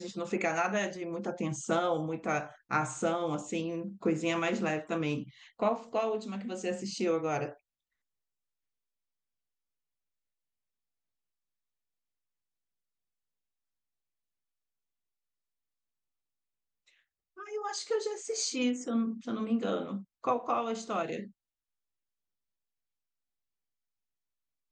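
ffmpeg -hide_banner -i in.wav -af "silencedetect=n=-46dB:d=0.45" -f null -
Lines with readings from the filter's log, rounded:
silence_start: 7.53
silence_end: 17.38 | silence_duration: 9.84
silence_start: 21.28
silence_end: 24.72 | silence_duration: 3.44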